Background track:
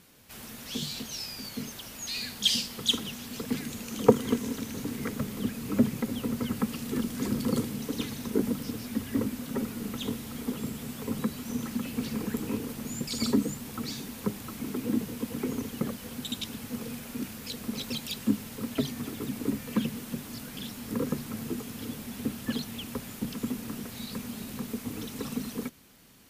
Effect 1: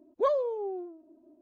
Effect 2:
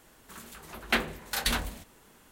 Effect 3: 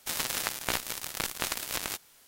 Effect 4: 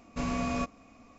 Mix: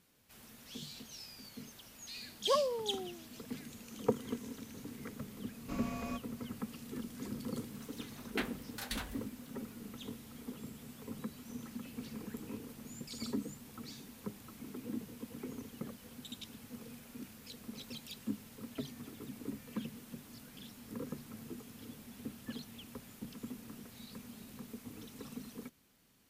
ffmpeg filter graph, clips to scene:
-filter_complex "[0:a]volume=0.237[s0];[1:a]highpass=f=640:p=1,atrim=end=1.41,asetpts=PTS-STARTPTS,volume=0.841,afade=t=in:d=0.004:c=hsin,afade=t=out:st=1.406:d=0.004:c=hsin,adelay=2270[s1];[4:a]atrim=end=1.18,asetpts=PTS-STARTPTS,volume=0.299,afade=t=in:d=0.004:c=hsin,afade=t=out:st=1.176:d=0.004:c=hsin,adelay=5520[s2];[2:a]atrim=end=2.31,asetpts=PTS-STARTPTS,volume=0.237,afade=t=in:d=0.004:c=hsin,afade=t=out:st=2.306:d=0.004:c=hsin,adelay=7450[s3];[s0][s1][s2][s3]amix=inputs=4:normalize=0"

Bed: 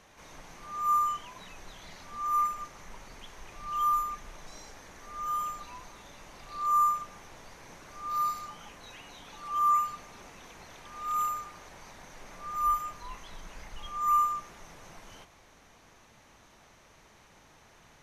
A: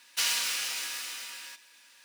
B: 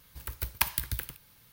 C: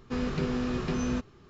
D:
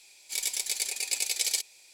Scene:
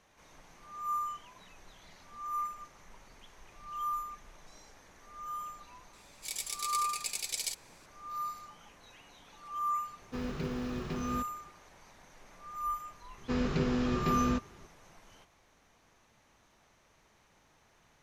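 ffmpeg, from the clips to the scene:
-filter_complex "[3:a]asplit=2[s0][s1];[0:a]volume=0.398[s2];[s0]acrusher=bits=8:mode=log:mix=0:aa=0.000001[s3];[4:a]atrim=end=1.93,asetpts=PTS-STARTPTS,volume=0.422,afade=t=in:d=0.004:c=hsin,afade=t=out:st=1.926:d=0.004:c=hsin,adelay=261513S[s4];[s3]atrim=end=1.49,asetpts=PTS-STARTPTS,volume=0.473,afade=t=in:d=0.004:c=hsin,afade=t=out:st=1.486:d=0.004:c=hsin,adelay=441882S[s5];[s1]atrim=end=1.49,asetpts=PTS-STARTPTS,volume=0.944,afade=t=in:d=0.004:c=hsin,afade=t=out:st=1.486:d=0.004:c=hsin,adelay=13180[s6];[s2][s4][s5][s6]amix=inputs=4:normalize=0"

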